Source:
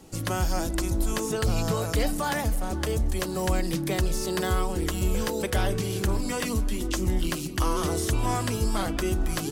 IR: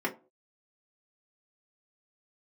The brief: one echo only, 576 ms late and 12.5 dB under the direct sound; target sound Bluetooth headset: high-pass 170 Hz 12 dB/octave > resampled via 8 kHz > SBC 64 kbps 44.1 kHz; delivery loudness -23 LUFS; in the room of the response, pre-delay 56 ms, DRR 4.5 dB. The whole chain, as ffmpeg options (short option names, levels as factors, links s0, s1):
-filter_complex "[0:a]aecho=1:1:576:0.237,asplit=2[s0][s1];[1:a]atrim=start_sample=2205,adelay=56[s2];[s1][s2]afir=irnorm=-1:irlink=0,volume=0.237[s3];[s0][s3]amix=inputs=2:normalize=0,highpass=170,aresample=8000,aresample=44100,volume=1.88" -ar 44100 -c:a sbc -b:a 64k